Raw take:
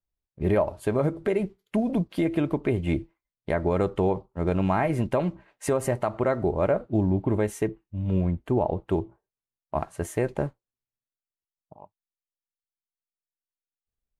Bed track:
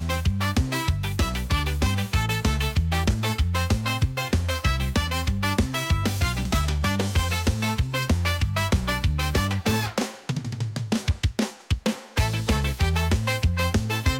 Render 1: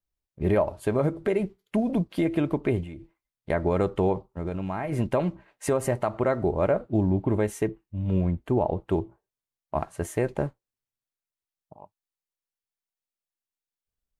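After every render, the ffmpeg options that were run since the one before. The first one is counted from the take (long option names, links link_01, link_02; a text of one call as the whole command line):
ffmpeg -i in.wav -filter_complex "[0:a]asettb=1/sr,asplit=3[link_01][link_02][link_03];[link_01]atrim=end=2.834[link_04];[link_02]atrim=start=2.83:end=3.5,asetpts=PTS-STARTPTS,afade=type=in:duration=0.004:curve=qsin,afade=type=out:start_time=0.666:duration=0.004:curve=qsin,acompressor=threshold=-35dB:ratio=16:attack=3.2:release=140:knee=1:detection=peak[link_05];[link_03]atrim=start=3.496[link_06];[link_04][link_05]acrossfade=duration=0.004:curve1=hsin:curve2=qsin[link_07];[link_07][link_06]acrossfade=duration=0.004:curve1=qsin:curve2=hsin,asplit=3[link_08][link_09][link_10];[link_08]afade=type=out:start_time=4.25:duration=0.02[link_11];[link_09]acompressor=threshold=-27dB:ratio=4:attack=3.2:release=140:knee=1:detection=peak,afade=type=in:start_time=4.25:duration=0.02,afade=type=out:start_time=4.91:duration=0.02[link_12];[link_10]afade=type=in:start_time=4.91:duration=0.02[link_13];[link_11][link_12][link_13]amix=inputs=3:normalize=0" out.wav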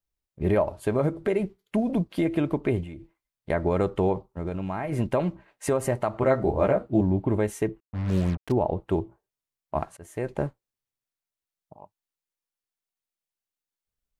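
ffmpeg -i in.wav -filter_complex "[0:a]asettb=1/sr,asplit=3[link_01][link_02][link_03];[link_01]atrim=end=6.204[link_04];[link_02]atrim=start=6.2:end=7.01,asetpts=PTS-STARTPTS,afade=type=in:duration=0.004:curve=qsin,afade=type=out:start_time=0.806:duration=0.004:curve=qsin,asplit=2[link_05][link_06];[link_06]adelay=15,volume=-3dB[link_07];[link_05][link_07]amix=inputs=2:normalize=0,atrim=end_sample=35721[link_08];[link_03]atrim=start=7.006[link_09];[link_04][link_08]acrossfade=duration=0.004:curve1=hsin:curve2=qsin[link_10];[link_10][link_09]acrossfade=duration=0.004:curve1=qsin:curve2=hsin,asettb=1/sr,asplit=3[link_11][link_12][link_13];[link_11]atrim=end=7.804[link_14];[link_12]atrim=start=7.8:end=8.52,asetpts=PTS-STARTPTS,afade=type=in:duration=0.004:curve=qsin,afade=type=out:start_time=0.716:duration=0.004:curve=qsin,acrusher=bits=5:mix=0:aa=0.5[link_15];[link_13]atrim=start=8.516[link_16];[link_14][link_15]acrossfade=duration=0.004:curve1=hsin:curve2=qsin[link_17];[link_17][link_16]acrossfade=duration=0.004:curve1=qsin:curve2=hsin,asplit=2[link_18][link_19];[link_18]atrim=end=9.97,asetpts=PTS-STARTPTS,afade=type=out:start_time=9.966:duration=0.004:curve=hsin:silence=0.0707946[link_20];[link_19]atrim=start=9.97,asetpts=PTS-STARTPTS,afade=type=in:duration=0.45:silence=0.0707946[link_21];[link_20][link_21]concat=n=2:v=0:a=1" out.wav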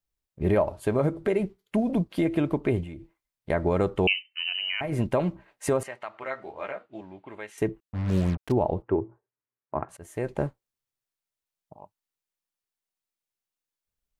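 ffmpeg -i in.wav -filter_complex "[0:a]asettb=1/sr,asplit=3[link_01][link_02][link_03];[link_01]atrim=end=4.074[link_04];[link_02]atrim=start=4.07:end=4.81,asetpts=PTS-STARTPTS,afade=type=in:duration=0.004:curve=qsin,afade=type=out:start_time=0.736:duration=0.004:curve=qsin,lowpass=frequency=2600:width_type=q:width=0.5098,lowpass=frequency=2600:width_type=q:width=0.6013,lowpass=frequency=2600:width_type=q:width=0.9,lowpass=frequency=2600:width_type=q:width=2.563,afreqshift=-3100[link_05];[link_03]atrim=start=4.806[link_06];[link_04][link_05]acrossfade=duration=0.004:curve1=hsin:curve2=qsin[link_07];[link_07][link_06]acrossfade=duration=0.004:curve1=qsin:curve2=hsin,asettb=1/sr,asplit=3[link_08][link_09][link_10];[link_08]atrim=end=5.834[link_11];[link_09]atrim=start=5.83:end=7.58,asetpts=PTS-STARTPTS,afade=type=in:duration=0.004:curve=qsin,afade=type=out:start_time=1.746:duration=0.004:curve=qsin,bandpass=frequency=2400:width_type=q:width=1.2[link_12];[link_10]atrim=start=7.576[link_13];[link_11][link_12]acrossfade=duration=0.004:curve1=hsin:curve2=qsin[link_14];[link_14][link_13]acrossfade=duration=0.004:curve1=qsin:curve2=hsin,asettb=1/sr,asplit=3[link_15][link_16][link_17];[link_15]atrim=end=8.824[link_18];[link_16]atrim=start=8.82:end=9.89,asetpts=PTS-STARTPTS,afade=type=in:duration=0.004:curve=qsin,afade=type=out:start_time=1.066:duration=0.004:curve=qsin,highpass=110,equalizer=frequency=120:width_type=q:width=4:gain=6,equalizer=frequency=170:width_type=q:width=4:gain=-9,equalizer=frequency=410:width_type=q:width=4:gain=3,equalizer=frequency=700:width_type=q:width=4:gain=-5,lowpass=frequency=2000:width=0.5412,lowpass=frequency=2000:width=1.3066[link_19];[link_17]atrim=start=9.886[link_20];[link_18][link_19]acrossfade=duration=0.004:curve1=hsin:curve2=qsin[link_21];[link_21][link_20]acrossfade=duration=0.004:curve1=qsin:curve2=hsin" out.wav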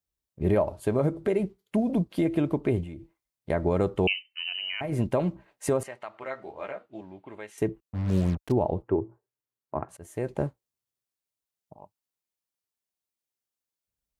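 ffmpeg -i in.wav -af "highpass=41,equalizer=frequency=1800:width_type=o:width=2.2:gain=-4" out.wav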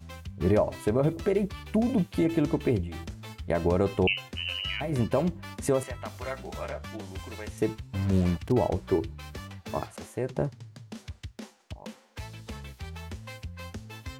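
ffmpeg -i in.wav -i bed.wav -filter_complex "[1:a]volume=-17.5dB[link_01];[0:a][link_01]amix=inputs=2:normalize=0" out.wav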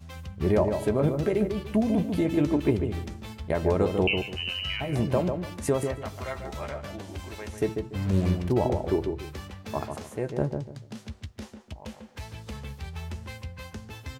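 ffmpeg -i in.wav -filter_complex "[0:a]asplit=2[link_01][link_02];[link_02]adelay=14,volume=-12dB[link_03];[link_01][link_03]amix=inputs=2:normalize=0,asplit=2[link_04][link_05];[link_05]adelay=145,lowpass=frequency=1200:poles=1,volume=-5dB,asplit=2[link_06][link_07];[link_07]adelay=145,lowpass=frequency=1200:poles=1,volume=0.26,asplit=2[link_08][link_09];[link_09]adelay=145,lowpass=frequency=1200:poles=1,volume=0.26[link_10];[link_06][link_08][link_10]amix=inputs=3:normalize=0[link_11];[link_04][link_11]amix=inputs=2:normalize=0" out.wav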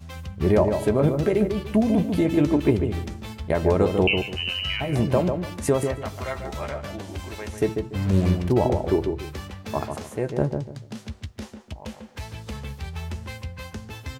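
ffmpeg -i in.wav -af "volume=4dB" out.wav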